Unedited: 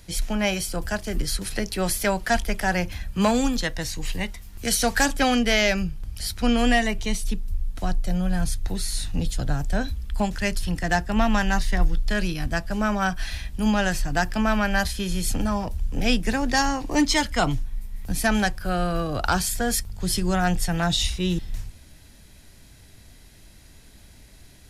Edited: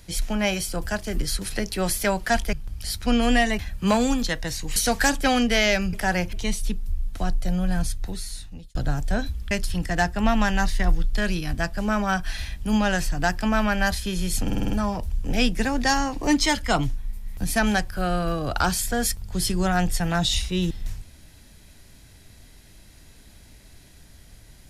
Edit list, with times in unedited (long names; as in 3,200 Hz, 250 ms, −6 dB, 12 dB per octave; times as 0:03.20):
0:02.53–0:02.93: swap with 0:05.89–0:06.95
0:04.10–0:04.72: remove
0:08.39–0:09.37: fade out
0:10.13–0:10.44: remove
0:15.38: stutter 0.05 s, 6 plays